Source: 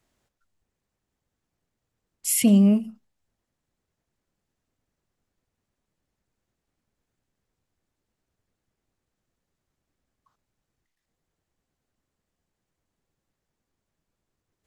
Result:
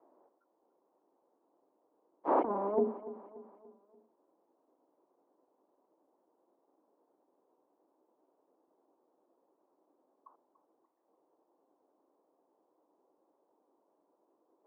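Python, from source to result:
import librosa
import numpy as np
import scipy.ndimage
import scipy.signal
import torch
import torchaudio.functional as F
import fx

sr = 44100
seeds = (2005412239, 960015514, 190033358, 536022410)

y = fx.cheby_harmonics(x, sr, harmonics=(6, 7), levels_db=(-14, -9), full_scale_db=-9.0)
y = scipy.signal.sosfilt(scipy.signal.ellip(3, 1.0, 80, [300.0, 1000.0], 'bandpass', fs=sr, output='sos'), y)
y = fx.hum_notches(y, sr, base_hz=60, count=7)
y = fx.over_compress(y, sr, threshold_db=-30.0, ratio=-0.5)
y = fx.echo_feedback(y, sr, ms=290, feedback_pct=46, wet_db=-15.5)
y = y * 10.0 ** (3.0 / 20.0)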